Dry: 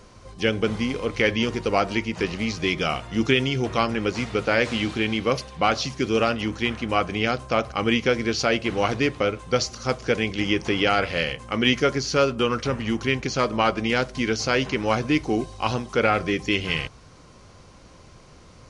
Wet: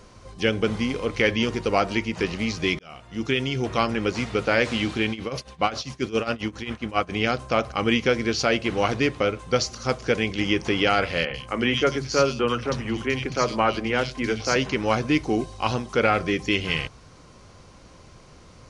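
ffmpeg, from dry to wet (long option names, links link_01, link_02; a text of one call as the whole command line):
ffmpeg -i in.wav -filter_complex "[0:a]asettb=1/sr,asplit=3[link_01][link_02][link_03];[link_01]atrim=end=5.104[link_04];[link_02]atrim=start=5.1:end=7.13,asetpts=PTS-STARTPTS,afade=type=in:duration=0.004:curve=qsin,afade=type=out:start_time=2.026:duration=0.004:curve=qsin,tremolo=f=7.4:d=0.84[link_05];[link_03]atrim=start=7.126[link_06];[link_04][link_05]acrossfade=duration=0.004:curve1=hsin:curve2=qsin[link_07];[link_07][link_06]acrossfade=duration=0.004:curve1=qsin:curve2=hsin,asettb=1/sr,asplit=3[link_08][link_09][link_10];[link_08]atrim=end=11.254[link_11];[link_09]atrim=start=11.25:end=14.56,asetpts=PTS-STARTPTS,afade=type=in:duration=0.004:curve=qsin,afade=type=out:start_time=3.306:duration=0.004:curve=qsin,acrossover=split=190|2900[link_12][link_13][link_14];[link_12]adelay=50[link_15];[link_14]adelay=90[link_16];[link_15][link_13][link_16]amix=inputs=3:normalize=0,atrim=end_sample=145971[link_17];[link_10]atrim=start=14.556[link_18];[link_11][link_17]acrossfade=duration=0.004:curve1=hsin:curve2=qsin[link_19];[link_19][link_18]acrossfade=duration=0.004:curve1=qsin:curve2=hsin,asplit=2[link_20][link_21];[link_20]atrim=end=2.79,asetpts=PTS-STARTPTS,afade=type=out:start_time=2.786:duration=0.004:curve=hsin[link_22];[link_21]atrim=start=2.79,asetpts=PTS-STARTPTS,afade=type=in:duration=1.26:curve=qsin[link_23];[link_22][link_23]concat=n=2:v=0:a=1" out.wav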